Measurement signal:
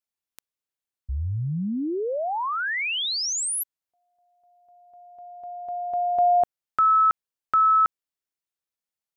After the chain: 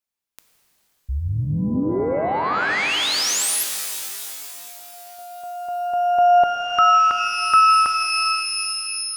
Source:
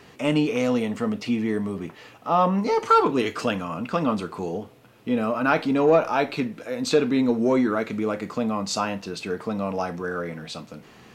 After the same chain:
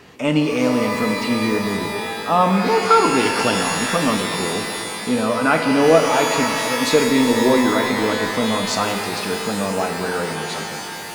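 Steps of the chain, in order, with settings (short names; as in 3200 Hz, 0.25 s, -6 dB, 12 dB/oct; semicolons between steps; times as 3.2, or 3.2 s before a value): shimmer reverb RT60 3.3 s, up +12 st, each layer -2 dB, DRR 5.5 dB; gain +3.5 dB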